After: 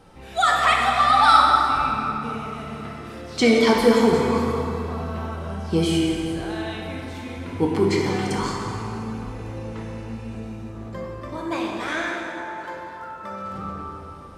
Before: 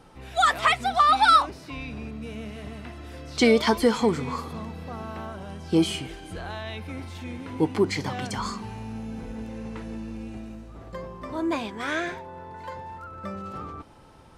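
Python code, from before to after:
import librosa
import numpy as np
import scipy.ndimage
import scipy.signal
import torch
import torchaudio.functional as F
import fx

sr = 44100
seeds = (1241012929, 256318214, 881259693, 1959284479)

y = fx.low_shelf(x, sr, hz=280.0, db=-9.5, at=(11.35, 13.46))
y = fx.rev_plate(y, sr, seeds[0], rt60_s=3.2, hf_ratio=0.6, predelay_ms=0, drr_db=-2.0)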